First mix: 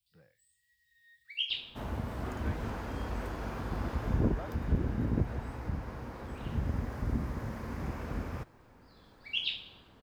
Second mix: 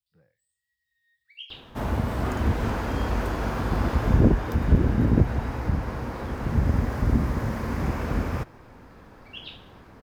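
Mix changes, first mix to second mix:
speech: add air absorption 480 m; first sound -8.0 dB; second sound +10.5 dB

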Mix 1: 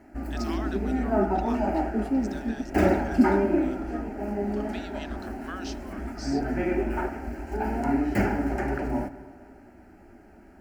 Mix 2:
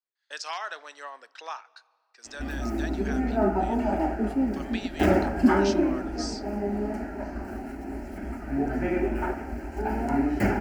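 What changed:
speech +5.5 dB; background: entry +2.25 s

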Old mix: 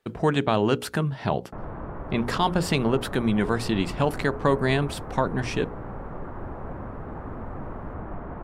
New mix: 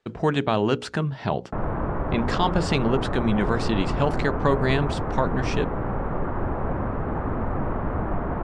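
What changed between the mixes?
background +9.0 dB; master: add LPF 7500 Hz 24 dB/oct

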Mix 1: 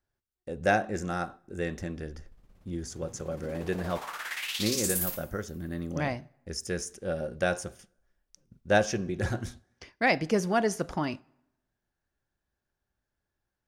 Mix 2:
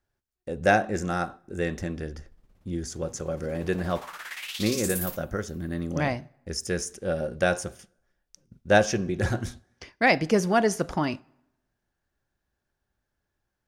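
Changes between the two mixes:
speech +4.0 dB; background: send -11.5 dB

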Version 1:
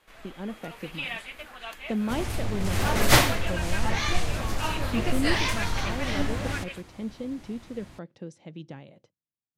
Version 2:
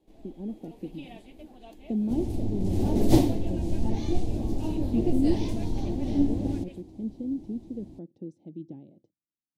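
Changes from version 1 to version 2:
speech -4.5 dB; master: add EQ curve 140 Hz 0 dB, 320 Hz +10 dB, 510 Hz -5 dB, 800 Hz -6 dB, 1300 Hz -30 dB, 3800 Hz -14 dB

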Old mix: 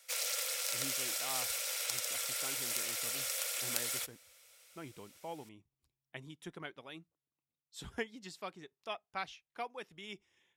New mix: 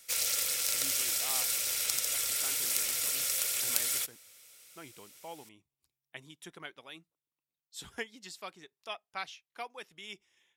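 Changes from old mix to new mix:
background: remove steep high-pass 470 Hz 72 dB/oct; master: add tilt +2 dB/oct

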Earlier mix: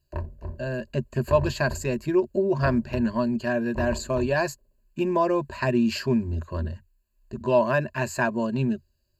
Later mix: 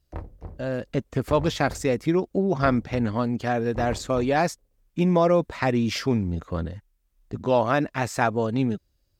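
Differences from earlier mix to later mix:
speech +4.5 dB; master: remove ripple EQ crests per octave 1.4, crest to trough 16 dB

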